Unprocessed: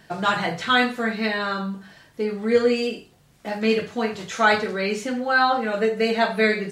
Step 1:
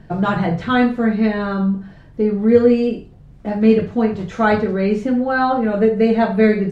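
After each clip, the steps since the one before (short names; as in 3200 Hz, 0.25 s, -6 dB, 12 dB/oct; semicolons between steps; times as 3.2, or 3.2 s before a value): tilt -4.5 dB/oct; gain +1 dB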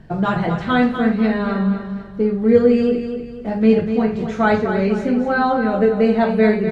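feedback echo 0.246 s, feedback 40%, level -8.5 dB; gain -1 dB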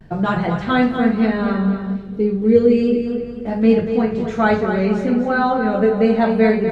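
vibrato 0.33 Hz 29 cents; dark delay 0.222 s, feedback 60%, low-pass 1200 Hz, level -13.5 dB; spectral gain 1.96–3.07, 520–2100 Hz -8 dB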